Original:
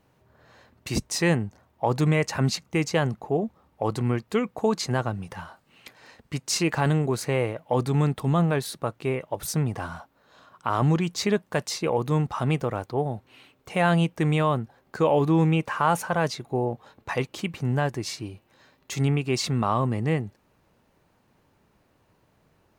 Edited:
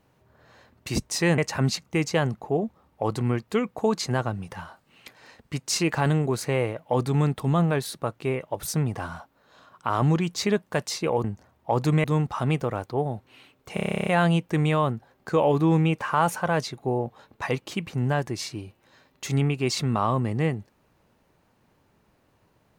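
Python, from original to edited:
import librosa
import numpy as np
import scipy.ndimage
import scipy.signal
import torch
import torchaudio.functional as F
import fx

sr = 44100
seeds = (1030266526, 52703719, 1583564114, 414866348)

y = fx.edit(x, sr, fx.move(start_s=1.38, length_s=0.8, to_s=12.04),
    fx.stutter(start_s=13.74, slice_s=0.03, count=12), tone=tone)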